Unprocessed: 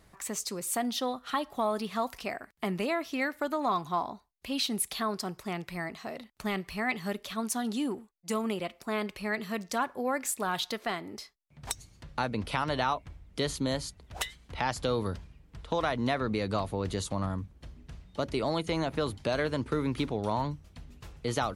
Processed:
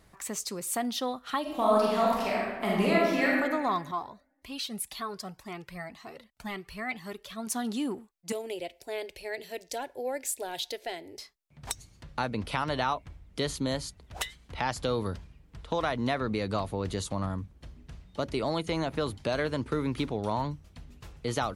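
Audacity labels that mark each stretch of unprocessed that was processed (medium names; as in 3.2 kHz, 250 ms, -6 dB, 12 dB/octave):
1.410000	3.300000	reverb throw, RT60 1.4 s, DRR -5 dB
3.910000	7.470000	Shepard-style flanger rising 1.9 Hz
8.320000	11.190000	static phaser centre 490 Hz, stages 4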